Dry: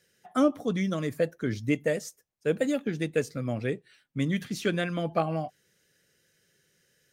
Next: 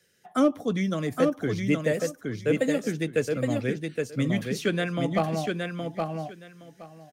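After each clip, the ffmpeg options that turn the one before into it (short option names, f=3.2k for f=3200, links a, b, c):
-filter_complex "[0:a]acrossover=split=180|610|2100[a][b][c][d];[c]volume=25dB,asoftclip=hard,volume=-25dB[e];[a][b][e][d]amix=inputs=4:normalize=0,aecho=1:1:818|1636|2454:0.631|0.107|0.0182,volume=1.5dB"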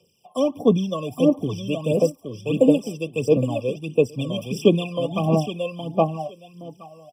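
-af "aphaser=in_gain=1:out_gain=1:delay=1.9:decay=0.69:speed=1.5:type=sinusoidal,highpass=f=110:p=1,afftfilt=real='re*eq(mod(floor(b*sr/1024/1200),2),0)':imag='im*eq(mod(floor(b*sr/1024/1200),2),0)':win_size=1024:overlap=0.75,volume=2dB"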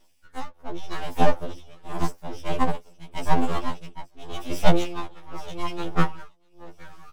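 -af "aeval=exprs='abs(val(0))':c=same,tremolo=f=0.86:d=0.93,afftfilt=real='re*2*eq(mod(b,4),0)':imag='im*2*eq(mod(b,4),0)':win_size=2048:overlap=0.75,volume=3.5dB"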